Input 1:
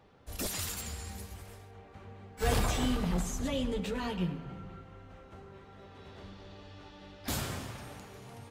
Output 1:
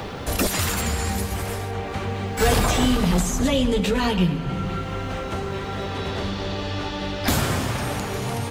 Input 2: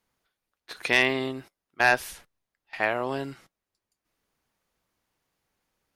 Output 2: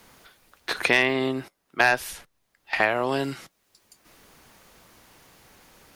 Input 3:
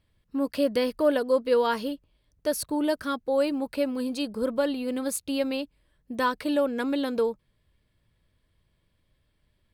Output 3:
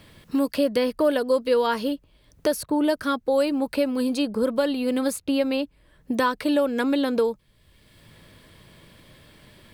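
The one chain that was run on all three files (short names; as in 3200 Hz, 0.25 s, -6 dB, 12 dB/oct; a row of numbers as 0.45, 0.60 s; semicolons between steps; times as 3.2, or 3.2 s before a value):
three-band squash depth 70%; match loudness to -24 LUFS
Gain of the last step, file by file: +13.5, +3.5, +3.0 dB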